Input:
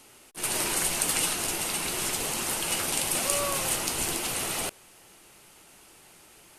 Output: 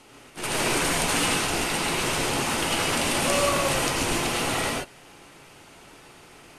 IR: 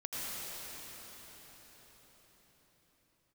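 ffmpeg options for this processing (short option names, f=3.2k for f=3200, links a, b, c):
-filter_complex "[0:a]aemphasis=mode=reproduction:type=50fm,acontrast=85[a];[1:a]atrim=start_sample=2205,afade=t=out:st=0.2:d=0.01,atrim=end_sample=9261[b];[a][b]afir=irnorm=-1:irlink=0,volume=2.5dB"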